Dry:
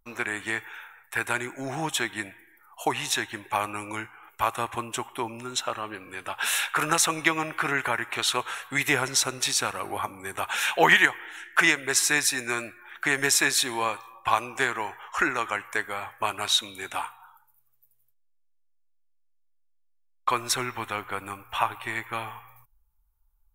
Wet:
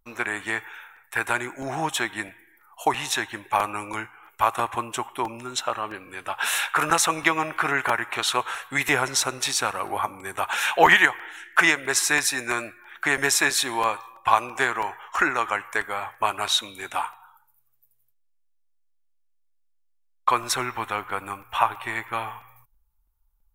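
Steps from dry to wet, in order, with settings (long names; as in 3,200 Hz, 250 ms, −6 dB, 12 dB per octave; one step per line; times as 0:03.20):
dynamic equaliser 910 Hz, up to +5 dB, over −39 dBFS, Q 0.77
regular buffer underruns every 0.33 s, samples 128, repeat, from 0:00.96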